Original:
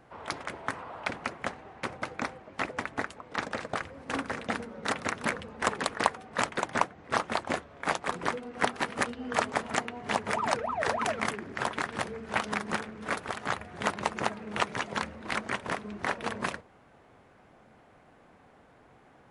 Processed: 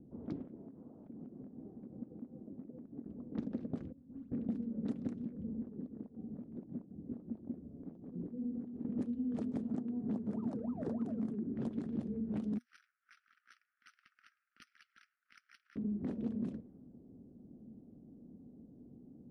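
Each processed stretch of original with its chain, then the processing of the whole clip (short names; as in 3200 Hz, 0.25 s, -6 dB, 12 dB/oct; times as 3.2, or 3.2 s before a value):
0.42–3.06 HPF 130 Hz 6 dB/oct + compressor 20:1, threshold -43 dBFS
3.92–4.32 hard clip -29.5 dBFS + passive tone stack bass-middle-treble 5-5-5 + dispersion highs, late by 0.114 s, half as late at 2100 Hz
5.14–8.85 compressor 12:1, threshold -39 dBFS + bell 1100 Hz -3.5 dB 2.2 oct
9.66–11.53 HPF 85 Hz + resonant high shelf 1800 Hz -6 dB, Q 1.5
12.58–15.76 steep high-pass 1300 Hz 96 dB/oct + careless resampling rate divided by 6×, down filtered, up hold
whole clip: low-pass opened by the level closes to 740 Hz, open at -26 dBFS; EQ curve 110 Hz 0 dB, 240 Hz +12 dB, 990 Hz -26 dB, 2000 Hz -29 dB, 3400 Hz -23 dB; compressor, threshold -34 dBFS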